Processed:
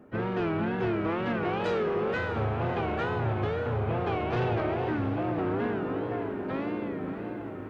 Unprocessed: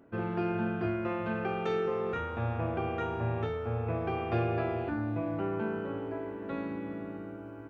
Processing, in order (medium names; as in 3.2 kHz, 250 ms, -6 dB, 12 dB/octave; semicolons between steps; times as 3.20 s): harmony voices +4 st -10 dB; in parallel at -10 dB: sine folder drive 9 dB, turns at -18.5 dBFS; on the sum: wow and flutter 140 cents; echo that smears into a reverb 599 ms, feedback 49%, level -10 dB; trim -3 dB